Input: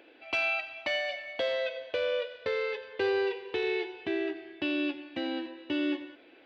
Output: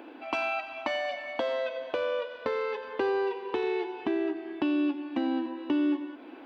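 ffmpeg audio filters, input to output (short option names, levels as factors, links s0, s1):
-af "equalizer=f=125:t=o:w=1:g=-11,equalizer=f=250:t=o:w=1:g=12,equalizer=f=500:t=o:w=1:g=-5,equalizer=f=1000:t=o:w=1:g=11,equalizer=f=2000:t=o:w=1:g=-6,equalizer=f=4000:t=o:w=1:g=-6,acompressor=threshold=0.01:ratio=2,volume=2.37"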